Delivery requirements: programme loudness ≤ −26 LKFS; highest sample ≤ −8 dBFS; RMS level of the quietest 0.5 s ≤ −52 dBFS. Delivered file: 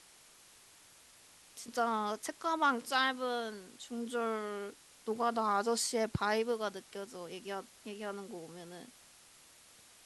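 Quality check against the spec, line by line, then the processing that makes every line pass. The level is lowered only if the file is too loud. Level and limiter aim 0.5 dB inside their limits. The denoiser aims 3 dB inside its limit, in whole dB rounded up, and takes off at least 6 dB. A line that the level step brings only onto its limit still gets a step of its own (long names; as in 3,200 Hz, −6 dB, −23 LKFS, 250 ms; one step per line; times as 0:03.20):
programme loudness −35.5 LKFS: in spec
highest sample −18.0 dBFS: in spec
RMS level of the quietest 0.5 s −60 dBFS: in spec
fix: no processing needed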